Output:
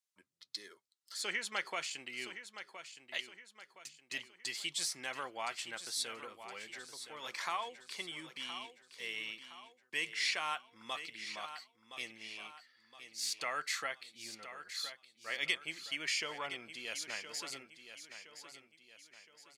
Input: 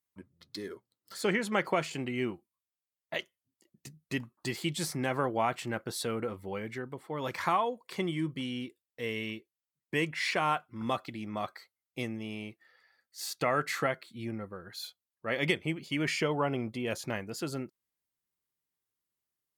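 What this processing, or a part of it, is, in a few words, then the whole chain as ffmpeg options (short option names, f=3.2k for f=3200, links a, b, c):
piezo pickup straight into a mixer: -af "lowpass=6k,aderivative,aecho=1:1:1017|2034|3051|4068:0.282|0.121|0.0521|0.0224,volume=7dB"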